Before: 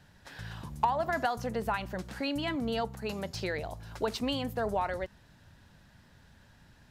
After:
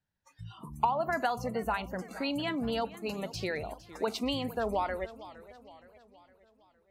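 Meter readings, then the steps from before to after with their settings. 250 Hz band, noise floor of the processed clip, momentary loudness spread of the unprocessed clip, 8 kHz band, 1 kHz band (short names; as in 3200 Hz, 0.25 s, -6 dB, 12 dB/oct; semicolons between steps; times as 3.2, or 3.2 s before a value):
0.0 dB, -71 dBFS, 12 LU, -0.5 dB, 0.0 dB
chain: spectral noise reduction 28 dB; warbling echo 0.464 s, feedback 50%, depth 171 cents, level -17 dB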